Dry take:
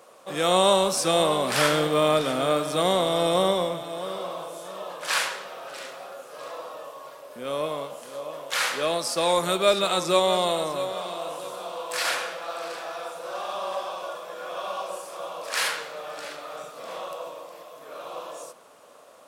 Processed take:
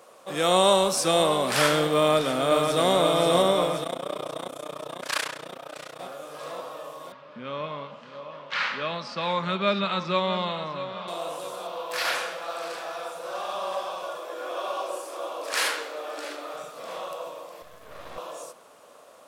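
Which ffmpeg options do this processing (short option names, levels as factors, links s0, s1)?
-filter_complex "[0:a]asplit=2[s0][s1];[s1]afade=t=in:st=1.98:d=0.01,afade=t=out:st=2.89:d=0.01,aecho=0:1:530|1060|1590|2120|2650|3180|3710|4240|4770|5300|5830|6360:0.595662|0.416964|0.291874|0.204312|0.143018|0.100113|0.0700791|0.0490553|0.0343387|0.0240371|0.016826|0.0117782[s2];[s0][s2]amix=inputs=2:normalize=0,asplit=3[s3][s4][s5];[s3]afade=t=out:st=3.83:d=0.02[s6];[s4]tremolo=f=30:d=0.947,afade=t=in:st=3.83:d=0.02,afade=t=out:st=5.99:d=0.02[s7];[s5]afade=t=in:st=5.99:d=0.02[s8];[s6][s7][s8]amix=inputs=3:normalize=0,asettb=1/sr,asplit=3[s9][s10][s11];[s9]atrim=end=7.124[s12];[s10]atrim=start=7.12:end=11.08,asetpts=PTS-STARTPTS,afade=t=in:d=0.004:c=qsin,afade=t=out:st=3.956:d=0.004:c=qsin,highpass=110,equalizer=f=120:t=q:w=4:g=6,equalizer=f=210:t=q:w=4:g=9,equalizer=f=330:t=q:w=4:g=-10,equalizer=f=480:t=q:w=4:g=-8,equalizer=f=710:t=q:w=4:g=-9,equalizer=f=3500:t=q:w=4:g=-4,lowpass=f=4000:w=0.5412,lowpass=f=4000:w=1.3066[s13];[s11]atrim=start=11.076[s14];[s12][s13]acrossfade=d=0.004:c1=hsin:c2=qsin[s15];[s15][s14]acrossfade=d=0.004:c1=qsin:c2=hsin,asettb=1/sr,asplit=3[s16][s17][s18];[s16]atrim=end=11.674[s19];[s17]atrim=start=11.67:end=12.15,asetpts=PTS-STARTPTS,afade=t=in:d=0.004:c=qsin,afade=t=out:st=0.476:d=0.004:c=qsin,equalizer=f=8300:t=o:w=0.76:g=-8.5[s20];[s18]atrim=start=12.146[s21];[s19][s20]acrossfade=d=0.004:c1=hsin:c2=qsin[s22];[s22][s21]acrossfade=d=0.004:c1=qsin:c2=hsin,asettb=1/sr,asplit=3[s23][s24][s25];[s23]atrim=end=14.184[s26];[s24]atrim=start=14.18:end=16.54,asetpts=PTS-STARTPTS,afade=t=in:d=0.004:c=qsin,afade=t=out:st=2.356:d=0.004:c=qsin,lowshelf=f=210:t=q:w=3:g=-11.5[s27];[s25]atrim=start=16.536[s28];[s26][s27]acrossfade=d=0.004:c1=hsin:c2=qsin[s29];[s29][s28]acrossfade=d=0.004:c1=qsin:c2=hsin,asettb=1/sr,asplit=3[s30][s31][s32];[s30]atrim=end=17.624[s33];[s31]atrim=start=17.62:end=18.18,asetpts=PTS-STARTPTS,afade=t=in:d=0.004:c=qsin,afade=t=out:st=0.556:d=0.004:c=qsin,aeval=exprs='max(val(0),0)':c=same[s34];[s32]atrim=start=18.176[s35];[s33][s34]acrossfade=d=0.004:c1=hsin:c2=qsin[s36];[s36][s35]acrossfade=d=0.004:c1=qsin:c2=hsin"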